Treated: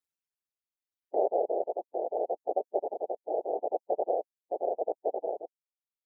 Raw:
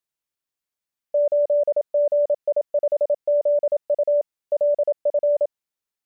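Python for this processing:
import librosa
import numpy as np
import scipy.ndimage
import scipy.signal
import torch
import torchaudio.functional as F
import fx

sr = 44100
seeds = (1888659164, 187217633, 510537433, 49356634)

y = fx.fade_out_tail(x, sr, length_s=1.2)
y = fx.dereverb_blind(y, sr, rt60_s=1.1)
y = fx.spec_gate(y, sr, threshold_db=-10, keep='strong')
y = fx.dynamic_eq(y, sr, hz=740.0, q=0.97, threshold_db=-34.0, ratio=4.0, max_db=-4)
y = y * (1.0 - 0.45 / 2.0 + 0.45 / 2.0 * np.cos(2.0 * np.pi * 0.78 * (np.arange(len(y)) / sr)))
y = fx.whisperise(y, sr, seeds[0])
y = y * np.sin(2.0 * np.pi * 88.0 * np.arange(len(y)) / sr)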